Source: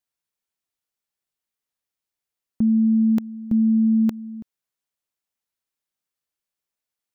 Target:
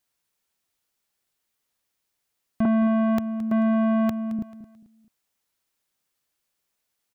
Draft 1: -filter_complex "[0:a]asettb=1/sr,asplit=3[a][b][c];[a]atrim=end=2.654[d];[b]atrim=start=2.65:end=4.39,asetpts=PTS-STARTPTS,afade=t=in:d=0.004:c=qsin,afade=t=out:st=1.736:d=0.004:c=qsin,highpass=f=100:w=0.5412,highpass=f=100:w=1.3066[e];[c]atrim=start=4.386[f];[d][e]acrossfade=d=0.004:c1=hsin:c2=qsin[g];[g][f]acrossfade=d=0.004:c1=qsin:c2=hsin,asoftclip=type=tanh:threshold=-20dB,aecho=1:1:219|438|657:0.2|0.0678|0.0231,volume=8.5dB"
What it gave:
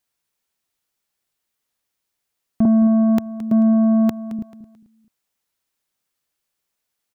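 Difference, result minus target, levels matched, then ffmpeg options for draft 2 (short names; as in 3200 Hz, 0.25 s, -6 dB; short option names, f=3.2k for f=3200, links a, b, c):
soft clip: distortion -7 dB
-filter_complex "[0:a]asettb=1/sr,asplit=3[a][b][c];[a]atrim=end=2.654[d];[b]atrim=start=2.65:end=4.39,asetpts=PTS-STARTPTS,afade=t=in:d=0.004:c=qsin,afade=t=out:st=1.736:d=0.004:c=qsin,highpass=f=100:w=0.5412,highpass=f=100:w=1.3066[e];[c]atrim=start=4.386[f];[d][e]acrossfade=d=0.004:c1=hsin:c2=qsin[g];[g][f]acrossfade=d=0.004:c1=qsin:c2=hsin,asoftclip=type=tanh:threshold=-27.5dB,aecho=1:1:219|438|657:0.2|0.0678|0.0231,volume=8.5dB"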